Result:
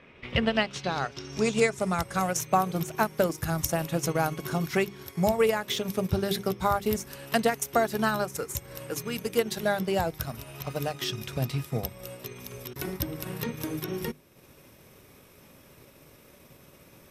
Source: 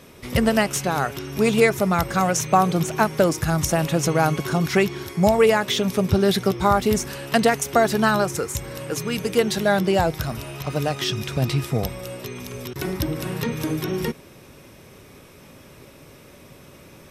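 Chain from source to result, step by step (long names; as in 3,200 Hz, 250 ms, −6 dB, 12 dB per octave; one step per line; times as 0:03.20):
low-pass filter sweep 2,300 Hz → 14,000 Hz, 0:00.02–0:02.49
mains-hum notches 50/100/150/200/250/300/350/400 Hz
transient designer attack +2 dB, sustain −6 dB
level −7.5 dB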